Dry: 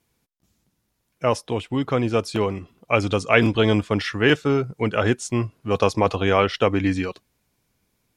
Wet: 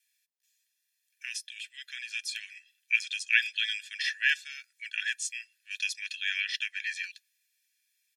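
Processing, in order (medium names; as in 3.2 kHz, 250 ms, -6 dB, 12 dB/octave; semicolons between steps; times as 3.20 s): steep high-pass 1.7 kHz 72 dB/octave; comb 1.2 ms, depth 78%; trim -3.5 dB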